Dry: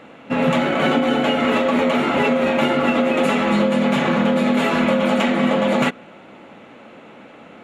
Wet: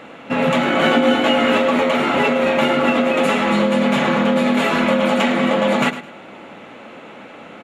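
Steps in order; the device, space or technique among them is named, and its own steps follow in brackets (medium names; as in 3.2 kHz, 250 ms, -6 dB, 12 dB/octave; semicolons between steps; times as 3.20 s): parallel compression (in parallel at -4 dB: compression, threshold -30 dBFS, peak gain reduction 15.5 dB); on the sum: bass shelf 450 Hz -4 dB; 0.66–1.57 s: doubling 17 ms -4.5 dB; feedback delay 106 ms, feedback 24%, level -13 dB; trim +1.5 dB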